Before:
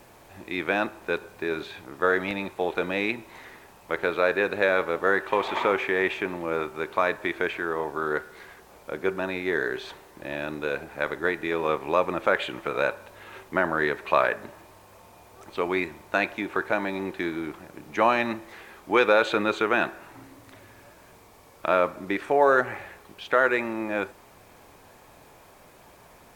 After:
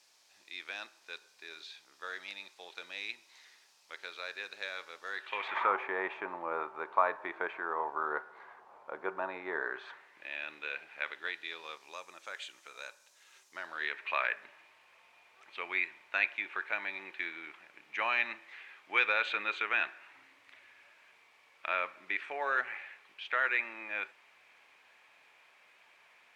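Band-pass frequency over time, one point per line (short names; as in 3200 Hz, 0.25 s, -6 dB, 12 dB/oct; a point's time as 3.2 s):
band-pass, Q 2.1
5.08 s 5100 Hz
5.77 s 990 Hz
9.61 s 990 Hz
10.28 s 2600 Hz
11.04 s 2600 Hz
12.01 s 6300 Hz
13.48 s 6300 Hz
13.97 s 2400 Hz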